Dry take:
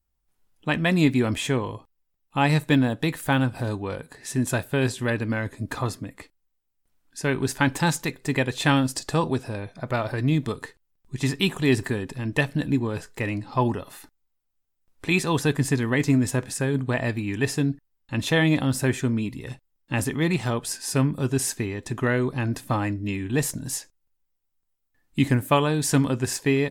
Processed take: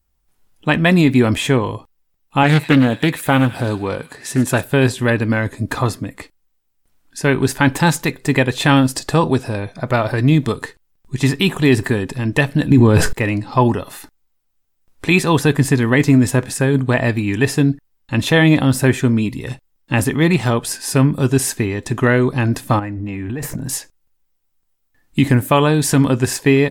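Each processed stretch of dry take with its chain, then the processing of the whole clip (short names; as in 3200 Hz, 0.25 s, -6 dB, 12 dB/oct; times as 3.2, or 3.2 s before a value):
2.43–4.64 HPF 95 Hz 6 dB/oct + thin delay 0.101 s, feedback 57%, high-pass 1800 Hz, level -13.5 dB + Doppler distortion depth 0.24 ms
12.71–13.13 low shelf 290 Hz +5.5 dB + fast leveller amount 70%
22.79–23.69 band shelf 6100 Hz -10.5 dB 2.3 oct + compressor 16:1, threshold -31 dBFS + transient shaper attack +5 dB, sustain +11 dB
whole clip: dynamic EQ 6500 Hz, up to -4 dB, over -41 dBFS, Q 0.89; maximiser +10 dB; gain -1 dB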